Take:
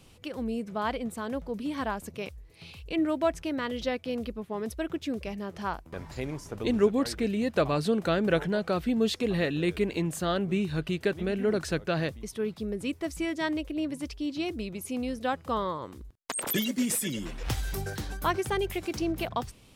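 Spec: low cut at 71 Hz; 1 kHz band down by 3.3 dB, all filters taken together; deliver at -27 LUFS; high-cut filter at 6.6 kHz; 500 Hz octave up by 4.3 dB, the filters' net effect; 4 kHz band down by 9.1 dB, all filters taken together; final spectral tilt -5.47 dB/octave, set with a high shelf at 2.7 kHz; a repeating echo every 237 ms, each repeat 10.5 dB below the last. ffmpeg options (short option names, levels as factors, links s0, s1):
-af "highpass=71,lowpass=6600,equalizer=f=500:t=o:g=7,equalizer=f=1000:t=o:g=-6,highshelf=f=2700:g=-7,equalizer=f=4000:t=o:g=-5.5,aecho=1:1:237|474|711:0.299|0.0896|0.0269,volume=1.19"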